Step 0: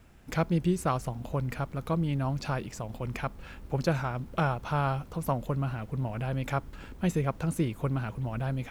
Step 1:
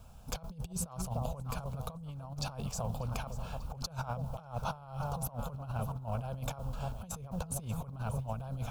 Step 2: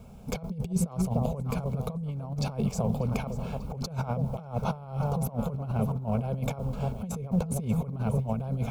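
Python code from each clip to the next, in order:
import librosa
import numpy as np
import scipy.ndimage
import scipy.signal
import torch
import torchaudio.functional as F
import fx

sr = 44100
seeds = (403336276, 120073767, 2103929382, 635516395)

y1 = fx.fixed_phaser(x, sr, hz=800.0, stages=4)
y1 = fx.echo_alternate(y1, sr, ms=296, hz=860.0, feedback_pct=65, wet_db=-12)
y1 = fx.over_compress(y1, sr, threshold_db=-37.0, ratio=-0.5)
y2 = fx.small_body(y1, sr, hz=(210.0, 400.0, 2200.0), ring_ms=25, db=15)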